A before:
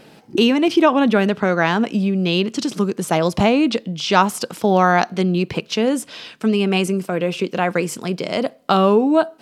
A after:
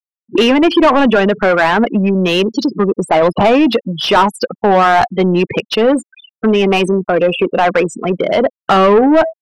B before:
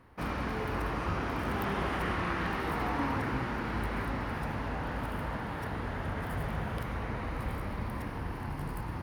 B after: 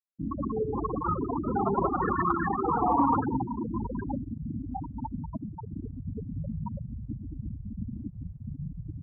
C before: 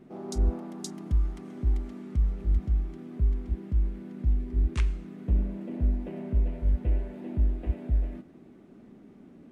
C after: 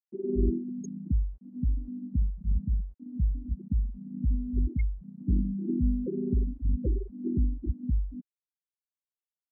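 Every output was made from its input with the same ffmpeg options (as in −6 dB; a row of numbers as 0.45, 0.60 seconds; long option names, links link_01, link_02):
-filter_complex "[0:a]afftfilt=real='re*gte(hypot(re,im),0.0794)':imag='im*gte(hypot(re,im),0.0794)':win_size=1024:overlap=0.75,asplit=2[link_01][link_02];[link_02]highpass=frequency=720:poles=1,volume=23dB,asoftclip=type=tanh:threshold=-0.5dB[link_03];[link_01][link_03]amix=inputs=2:normalize=0,lowpass=frequency=1700:poles=1,volume=-6dB"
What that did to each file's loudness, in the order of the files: +5.5, +3.5, −1.0 LU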